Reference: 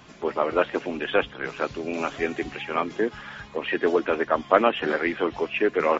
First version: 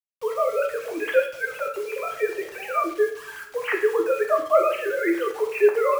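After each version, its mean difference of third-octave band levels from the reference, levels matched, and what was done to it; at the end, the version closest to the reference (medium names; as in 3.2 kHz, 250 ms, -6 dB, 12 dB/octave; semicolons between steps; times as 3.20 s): 12.5 dB: formants replaced by sine waves; in parallel at -1 dB: compression 5:1, threshold -29 dBFS, peak gain reduction 14.5 dB; on the sum: bit crusher 7-bit; two-slope reverb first 0.57 s, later 2.3 s, from -27 dB, DRR 1.5 dB; trim -3.5 dB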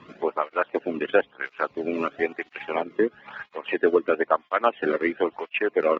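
6.5 dB: low-pass 2.7 kHz 12 dB/octave; transient shaper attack +2 dB, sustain -11 dB; in parallel at -2 dB: compression, threshold -29 dBFS, peak gain reduction 17.5 dB; on the sum: cancelling through-zero flanger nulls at 1 Hz, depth 1.4 ms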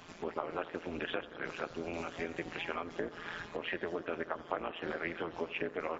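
5.0 dB: bass shelf 110 Hz -7.5 dB; compression 6:1, threshold -32 dBFS, peak gain reduction 19 dB; AM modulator 170 Hz, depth 75%; bucket-brigade echo 88 ms, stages 1024, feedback 85%, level -17.5 dB; trim +1 dB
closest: third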